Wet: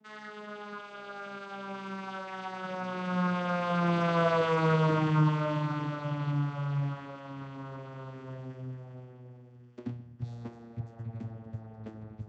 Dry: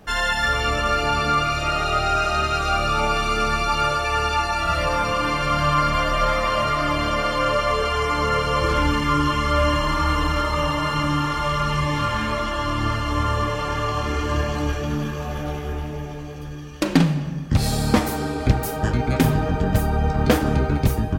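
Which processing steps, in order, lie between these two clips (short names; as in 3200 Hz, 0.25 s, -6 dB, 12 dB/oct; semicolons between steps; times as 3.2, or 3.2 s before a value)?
vocoder on a gliding note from G#3, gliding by -11 st; Doppler pass-by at 7.6, 11 m/s, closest 11 m; time stretch by phase-locked vocoder 0.58×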